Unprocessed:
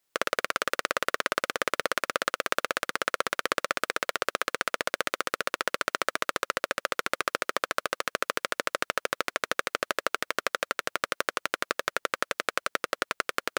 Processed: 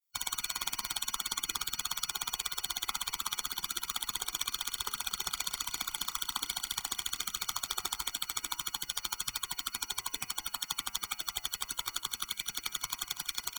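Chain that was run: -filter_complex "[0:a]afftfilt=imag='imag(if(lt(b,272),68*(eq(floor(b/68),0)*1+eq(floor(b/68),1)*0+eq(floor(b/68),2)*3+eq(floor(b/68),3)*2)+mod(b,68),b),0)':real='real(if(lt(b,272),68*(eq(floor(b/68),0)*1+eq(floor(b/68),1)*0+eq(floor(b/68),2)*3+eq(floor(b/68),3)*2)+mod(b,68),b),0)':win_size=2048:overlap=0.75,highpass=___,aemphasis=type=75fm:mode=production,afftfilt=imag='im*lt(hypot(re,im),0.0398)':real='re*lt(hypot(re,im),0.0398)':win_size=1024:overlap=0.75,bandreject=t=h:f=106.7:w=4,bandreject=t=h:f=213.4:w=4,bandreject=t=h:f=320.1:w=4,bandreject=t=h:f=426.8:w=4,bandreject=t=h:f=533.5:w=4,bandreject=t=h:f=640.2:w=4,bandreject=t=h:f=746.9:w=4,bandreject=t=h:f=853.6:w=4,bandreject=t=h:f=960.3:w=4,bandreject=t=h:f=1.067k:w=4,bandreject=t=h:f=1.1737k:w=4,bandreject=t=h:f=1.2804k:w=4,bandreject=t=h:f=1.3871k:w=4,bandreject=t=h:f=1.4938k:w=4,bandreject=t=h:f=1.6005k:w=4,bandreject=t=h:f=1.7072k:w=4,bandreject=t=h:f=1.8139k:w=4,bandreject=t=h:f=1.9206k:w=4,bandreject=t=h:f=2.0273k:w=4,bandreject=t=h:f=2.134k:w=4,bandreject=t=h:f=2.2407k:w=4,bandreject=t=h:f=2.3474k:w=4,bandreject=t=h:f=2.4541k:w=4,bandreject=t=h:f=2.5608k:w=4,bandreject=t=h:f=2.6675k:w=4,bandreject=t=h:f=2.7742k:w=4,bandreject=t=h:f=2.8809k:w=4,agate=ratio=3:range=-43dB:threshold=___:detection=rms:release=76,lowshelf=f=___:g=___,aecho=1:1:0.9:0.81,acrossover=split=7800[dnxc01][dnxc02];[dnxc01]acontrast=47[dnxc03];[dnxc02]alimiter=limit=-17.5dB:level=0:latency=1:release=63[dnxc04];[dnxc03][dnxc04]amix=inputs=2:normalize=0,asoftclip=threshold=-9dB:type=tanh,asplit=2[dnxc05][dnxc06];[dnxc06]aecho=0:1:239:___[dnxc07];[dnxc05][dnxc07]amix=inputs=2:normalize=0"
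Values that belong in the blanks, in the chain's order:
41, -50dB, 240, -4.5, 0.2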